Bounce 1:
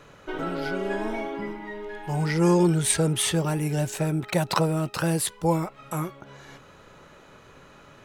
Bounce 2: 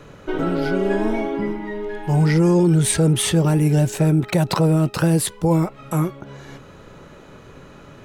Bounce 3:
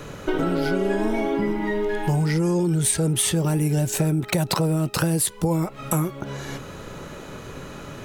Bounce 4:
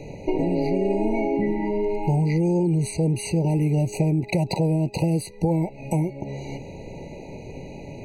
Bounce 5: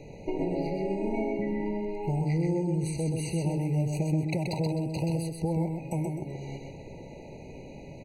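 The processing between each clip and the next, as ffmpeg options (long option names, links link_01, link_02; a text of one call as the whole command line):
ffmpeg -i in.wav -filter_complex "[0:a]acrossover=split=490[link_01][link_02];[link_01]acontrast=80[link_03];[link_03][link_02]amix=inputs=2:normalize=0,alimiter=level_in=11.5dB:limit=-1dB:release=50:level=0:latency=1,volume=-8dB" out.wav
ffmpeg -i in.wav -af "highshelf=frequency=6000:gain=9.5,acompressor=threshold=-25dB:ratio=6,volume=5.5dB" out.wav
ffmpeg -i in.wav -af "aemphasis=mode=reproduction:type=50fm,afftfilt=real='re*eq(mod(floor(b*sr/1024/970),2),0)':imag='im*eq(mod(floor(b*sr/1024/970),2),0)':win_size=1024:overlap=0.75" out.wav
ffmpeg -i in.wav -af "aecho=1:1:129|258|387|516:0.631|0.208|0.0687|0.0227,volume=-8dB" out.wav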